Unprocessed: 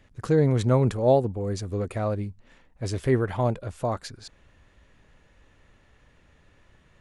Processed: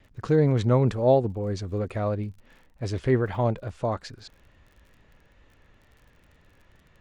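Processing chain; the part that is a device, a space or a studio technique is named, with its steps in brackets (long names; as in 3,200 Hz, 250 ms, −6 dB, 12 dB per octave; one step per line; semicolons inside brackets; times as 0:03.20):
lo-fi chain (low-pass filter 5,400 Hz 12 dB per octave; tape wow and flutter; surface crackle 41 per second −47 dBFS)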